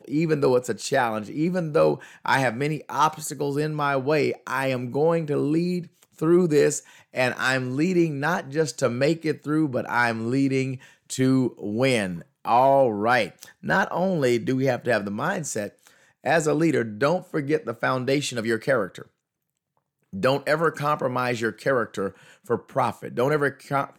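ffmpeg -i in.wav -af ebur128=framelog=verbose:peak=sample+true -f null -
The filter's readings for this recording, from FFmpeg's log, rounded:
Integrated loudness:
  I:         -23.8 LUFS
  Threshold: -34.0 LUFS
Loudness range:
  LRA:         3.5 LU
  Threshold: -44.1 LUFS
  LRA low:   -26.0 LUFS
  LRA high:  -22.6 LUFS
Sample peak:
  Peak:       -8.1 dBFS
True peak:
  Peak:       -8.0 dBFS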